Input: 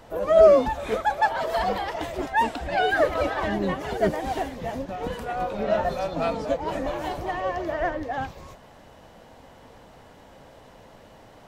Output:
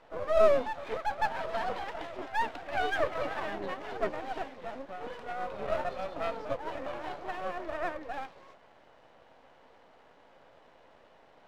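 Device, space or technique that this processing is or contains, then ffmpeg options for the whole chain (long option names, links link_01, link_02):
crystal radio: -af "highpass=360,lowpass=3400,aeval=exprs='if(lt(val(0),0),0.251*val(0),val(0))':channel_layout=same,volume=-4.5dB"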